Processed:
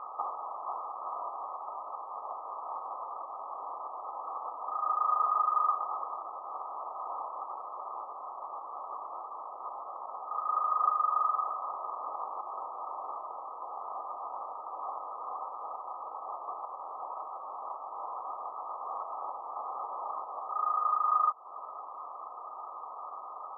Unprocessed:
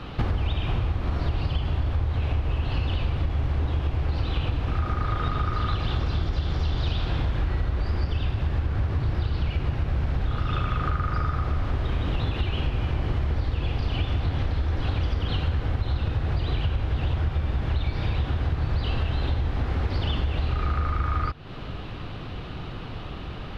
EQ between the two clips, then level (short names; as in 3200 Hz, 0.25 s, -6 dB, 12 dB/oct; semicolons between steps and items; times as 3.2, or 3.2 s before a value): HPF 880 Hz 24 dB/oct; brick-wall FIR low-pass 1300 Hz; air absorption 370 m; +8.5 dB